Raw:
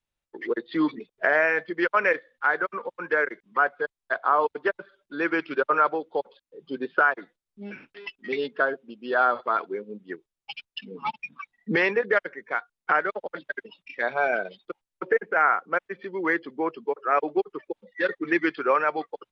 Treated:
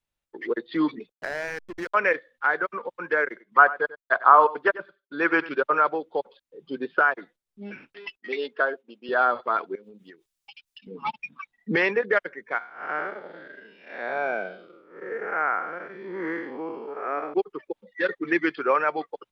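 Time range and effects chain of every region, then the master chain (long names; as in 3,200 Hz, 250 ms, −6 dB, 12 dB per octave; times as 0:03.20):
0:01.12–0:01.94: high-shelf EQ 3,900 Hz +7.5 dB + downward compressor 2 to 1, threshold −33 dBFS + slack as between gear wheels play −29 dBFS
0:03.27–0:05.49: downward expander −53 dBFS + dynamic equaliser 1,100 Hz, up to +8 dB, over −34 dBFS, Q 0.85 + single-tap delay 94 ms −17 dB
0:08.17–0:09.09: downward expander −49 dBFS + high-pass filter 340 Hz
0:09.75–0:10.87: high-shelf EQ 2,200 Hz +12 dB + downward compressor 20 to 1, threshold −43 dBFS
0:12.58–0:17.34: spectrum smeared in time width 214 ms + low shelf with overshoot 130 Hz −8.5 dB, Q 1.5
whole clip: no processing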